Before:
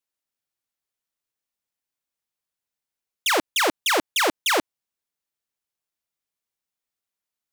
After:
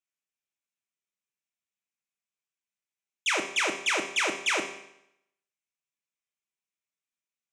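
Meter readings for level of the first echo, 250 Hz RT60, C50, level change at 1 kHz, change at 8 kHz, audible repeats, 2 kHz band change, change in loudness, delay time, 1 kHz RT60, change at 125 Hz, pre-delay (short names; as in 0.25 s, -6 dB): none, 0.80 s, 8.0 dB, -8.5 dB, -5.0 dB, none, -3.0 dB, -5.0 dB, none, 0.80 s, n/a, 5 ms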